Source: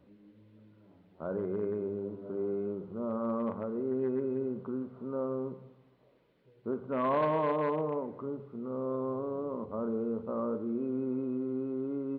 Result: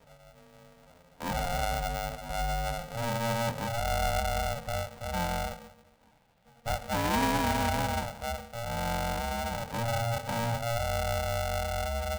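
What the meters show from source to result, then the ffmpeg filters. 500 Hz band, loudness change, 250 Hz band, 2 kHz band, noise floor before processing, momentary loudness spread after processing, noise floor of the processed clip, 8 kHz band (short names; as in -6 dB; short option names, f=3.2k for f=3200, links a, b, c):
-2.0 dB, +2.5 dB, -3.5 dB, +15.5 dB, -64 dBFS, 8 LU, -61 dBFS, n/a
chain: -af "asuperstop=centerf=1000:order=12:qfactor=1.4,aeval=exprs='val(0)*sgn(sin(2*PI*350*n/s))':c=same,volume=3dB"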